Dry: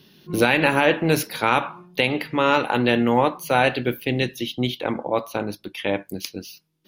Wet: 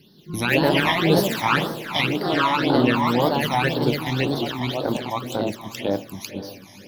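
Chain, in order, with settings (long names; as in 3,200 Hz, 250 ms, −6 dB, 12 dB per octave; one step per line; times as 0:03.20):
feedback delay with all-pass diffusion 510 ms, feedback 47%, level −11.5 dB
delay with pitch and tempo change per echo 183 ms, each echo +2 semitones, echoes 3
all-pass phaser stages 12, 1.9 Hz, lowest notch 450–2,500 Hz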